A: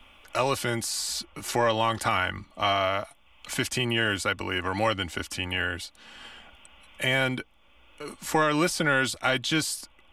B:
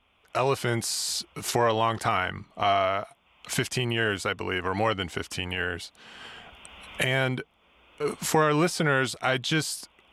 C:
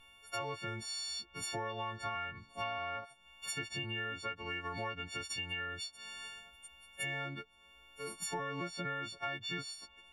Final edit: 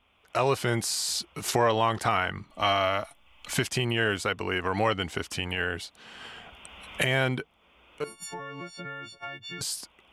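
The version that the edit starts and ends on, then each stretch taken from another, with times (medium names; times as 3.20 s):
B
2.50–3.54 s: from A
8.04–9.61 s: from C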